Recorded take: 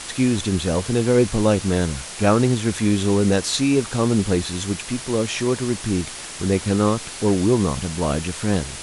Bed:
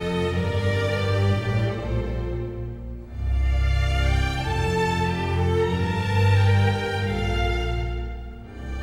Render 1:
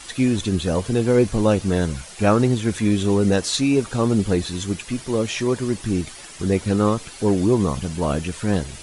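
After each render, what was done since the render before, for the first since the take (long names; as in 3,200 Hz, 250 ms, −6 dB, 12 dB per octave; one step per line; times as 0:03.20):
broadband denoise 10 dB, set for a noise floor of −35 dBFS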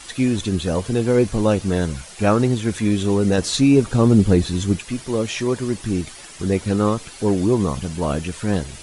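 0:03.38–0:04.79: low-shelf EQ 380 Hz +7.5 dB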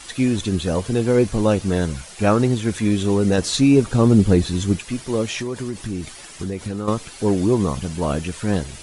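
0:05.25–0:06.88: downward compressor, threshold −22 dBFS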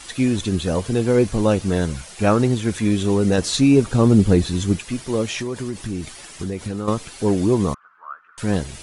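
0:07.74–0:08.38: flat-topped band-pass 1,300 Hz, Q 3.8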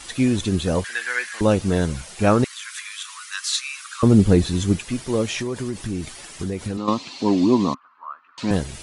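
0:00.84–0:01.41: high-pass with resonance 1,700 Hz, resonance Q 7.5
0:02.44–0:04.03: Butterworth high-pass 1,100 Hz 72 dB per octave
0:06.77–0:08.51: loudspeaker in its box 190–6,500 Hz, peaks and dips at 260 Hz +9 dB, 450 Hz −7 dB, 1,000 Hz +7 dB, 1,500 Hz −9 dB, 2,700 Hz +4 dB, 4,200 Hz +9 dB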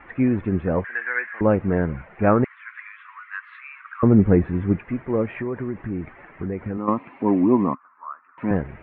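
Butterworth low-pass 2,200 Hz 48 dB per octave
low-shelf EQ 63 Hz −8 dB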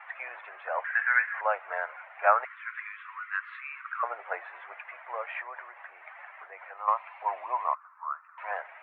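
Butterworth high-pass 650 Hz 48 dB per octave
dynamic equaliser 1,400 Hz, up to +5 dB, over −46 dBFS, Q 7.9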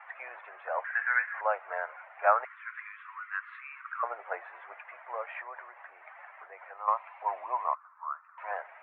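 high-shelf EQ 2,500 Hz −11 dB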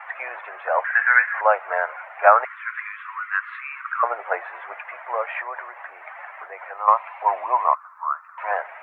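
level +11.5 dB
brickwall limiter −1 dBFS, peak gain reduction 2.5 dB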